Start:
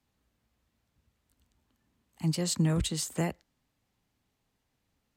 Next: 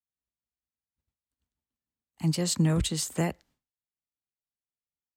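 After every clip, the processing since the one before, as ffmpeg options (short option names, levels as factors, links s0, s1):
-af "agate=range=0.0224:threshold=0.00126:ratio=3:detection=peak,volume=1.33"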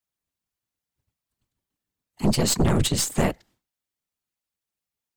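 -af "afftfilt=real='hypot(re,im)*cos(2*PI*random(0))':imag='hypot(re,im)*sin(2*PI*random(1))':win_size=512:overlap=0.75,aeval=exprs='0.126*(cos(1*acos(clip(val(0)/0.126,-1,1)))-cos(1*PI/2))+0.0398*(cos(5*acos(clip(val(0)/0.126,-1,1)))-cos(5*PI/2))+0.0316*(cos(6*acos(clip(val(0)/0.126,-1,1)))-cos(6*PI/2))':c=same,volume=1.78"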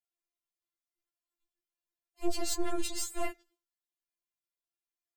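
-af "afftfilt=real='re*4*eq(mod(b,16),0)':imag='im*4*eq(mod(b,16),0)':win_size=2048:overlap=0.75,volume=0.398"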